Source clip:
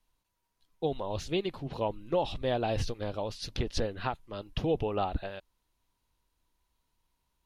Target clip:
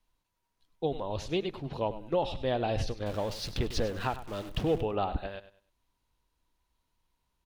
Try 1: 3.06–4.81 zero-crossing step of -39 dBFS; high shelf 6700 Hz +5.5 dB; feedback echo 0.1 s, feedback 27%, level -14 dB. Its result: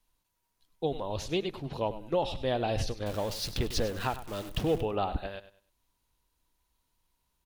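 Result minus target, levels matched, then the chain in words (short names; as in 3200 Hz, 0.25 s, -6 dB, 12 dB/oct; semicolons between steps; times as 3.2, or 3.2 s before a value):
8000 Hz band +4.5 dB
3.06–4.81 zero-crossing step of -39 dBFS; high shelf 6700 Hz -4.5 dB; feedback echo 0.1 s, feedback 27%, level -14 dB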